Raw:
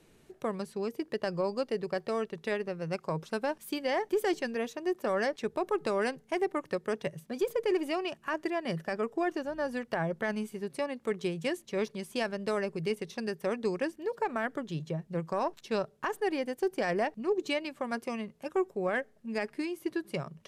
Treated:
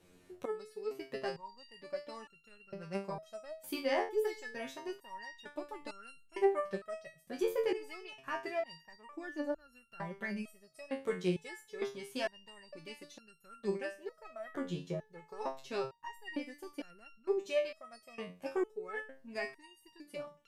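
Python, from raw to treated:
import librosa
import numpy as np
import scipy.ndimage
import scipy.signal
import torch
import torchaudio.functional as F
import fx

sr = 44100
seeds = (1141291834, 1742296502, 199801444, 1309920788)

y = fx.resonator_held(x, sr, hz=2.2, low_hz=90.0, high_hz=1400.0)
y = F.gain(torch.from_numpy(y), 7.0).numpy()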